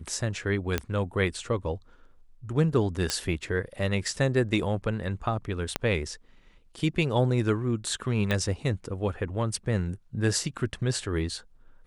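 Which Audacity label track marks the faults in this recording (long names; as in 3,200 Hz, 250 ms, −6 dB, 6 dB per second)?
0.780000	0.780000	click −11 dBFS
3.100000	3.100000	click −10 dBFS
5.760000	5.760000	click −10 dBFS
8.310000	8.310000	click −14 dBFS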